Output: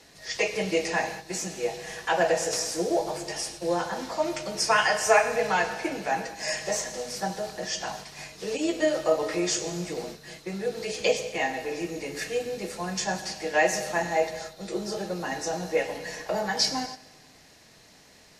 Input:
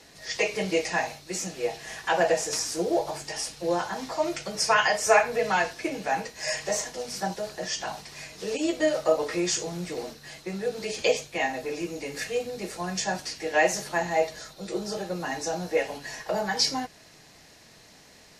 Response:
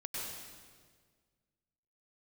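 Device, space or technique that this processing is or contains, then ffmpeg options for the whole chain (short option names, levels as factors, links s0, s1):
keyed gated reverb: -filter_complex "[0:a]asplit=3[s0][s1][s2];[1:a]atrim=start_sample=2205[s3];[s1][s3]afir=irnorm=-1:irlink=0[s4];[s2]apad=whole_len=811435[s5];[s4][s5]sidechaingate=range=0.282:threshold=0.00794:ratio=16:detection=peak,volume=0.355[s6];[s0][s6]amix=inputs=2:normalize=0,volume=0.794"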